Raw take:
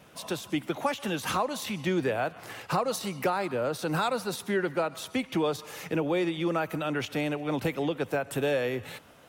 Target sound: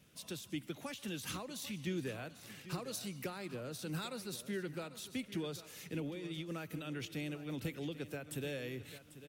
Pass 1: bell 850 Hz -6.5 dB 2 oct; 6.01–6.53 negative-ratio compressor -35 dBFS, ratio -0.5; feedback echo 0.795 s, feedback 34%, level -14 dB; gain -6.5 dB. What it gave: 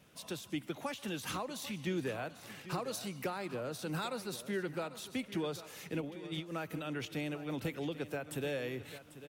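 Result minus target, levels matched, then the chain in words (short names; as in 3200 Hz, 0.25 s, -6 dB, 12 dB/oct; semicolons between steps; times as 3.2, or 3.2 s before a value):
1000 Hz band +4.5 dB
bell 850 Hz -15.5 dB 2 oct; 6.01–6.53 negative-ratio compressor -35 dBFS, ratio -0.5; feedback echo 0.795 s, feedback 34%, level -14 dB; gain -6.5 dB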